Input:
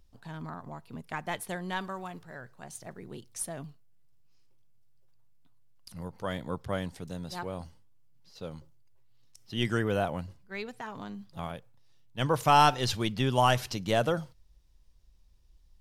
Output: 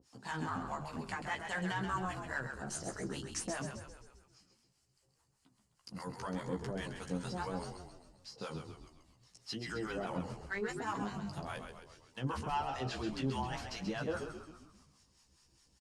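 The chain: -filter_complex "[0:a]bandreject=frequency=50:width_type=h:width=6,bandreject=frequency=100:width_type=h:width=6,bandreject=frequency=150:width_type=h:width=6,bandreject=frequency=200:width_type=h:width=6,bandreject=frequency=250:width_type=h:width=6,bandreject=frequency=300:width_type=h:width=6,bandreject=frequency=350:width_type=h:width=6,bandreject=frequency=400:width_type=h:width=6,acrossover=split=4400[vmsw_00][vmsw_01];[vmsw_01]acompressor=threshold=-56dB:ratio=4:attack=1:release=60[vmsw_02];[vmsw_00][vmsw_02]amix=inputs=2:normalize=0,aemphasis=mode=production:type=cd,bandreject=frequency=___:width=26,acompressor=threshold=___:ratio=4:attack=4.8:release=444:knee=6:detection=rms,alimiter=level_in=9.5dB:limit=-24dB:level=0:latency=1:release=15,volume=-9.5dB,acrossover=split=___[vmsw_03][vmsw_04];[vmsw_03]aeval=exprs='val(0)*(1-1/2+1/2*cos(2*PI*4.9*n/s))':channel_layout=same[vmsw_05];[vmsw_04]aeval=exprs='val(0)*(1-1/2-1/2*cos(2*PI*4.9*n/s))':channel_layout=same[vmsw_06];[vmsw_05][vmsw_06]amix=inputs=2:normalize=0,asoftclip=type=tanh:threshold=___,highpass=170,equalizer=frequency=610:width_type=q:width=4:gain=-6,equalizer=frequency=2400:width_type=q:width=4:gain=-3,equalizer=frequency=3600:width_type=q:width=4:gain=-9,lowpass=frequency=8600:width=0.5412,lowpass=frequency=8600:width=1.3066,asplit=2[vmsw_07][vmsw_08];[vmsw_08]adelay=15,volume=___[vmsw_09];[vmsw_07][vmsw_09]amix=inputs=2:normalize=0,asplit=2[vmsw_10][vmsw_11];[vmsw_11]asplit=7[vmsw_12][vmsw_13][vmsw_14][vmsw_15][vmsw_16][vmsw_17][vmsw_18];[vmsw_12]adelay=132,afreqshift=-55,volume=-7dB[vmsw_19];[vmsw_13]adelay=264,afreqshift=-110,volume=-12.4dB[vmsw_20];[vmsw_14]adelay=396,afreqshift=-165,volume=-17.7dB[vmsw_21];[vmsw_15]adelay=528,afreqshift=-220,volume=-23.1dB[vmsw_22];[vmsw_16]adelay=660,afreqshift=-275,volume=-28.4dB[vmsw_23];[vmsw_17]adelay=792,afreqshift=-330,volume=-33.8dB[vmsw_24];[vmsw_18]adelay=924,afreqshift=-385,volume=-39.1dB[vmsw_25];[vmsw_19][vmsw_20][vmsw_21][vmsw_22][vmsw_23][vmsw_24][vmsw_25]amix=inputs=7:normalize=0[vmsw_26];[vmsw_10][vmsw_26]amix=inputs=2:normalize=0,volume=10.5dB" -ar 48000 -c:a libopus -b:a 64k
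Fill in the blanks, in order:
6000, -33dB, 680, -36dB, -4.5dB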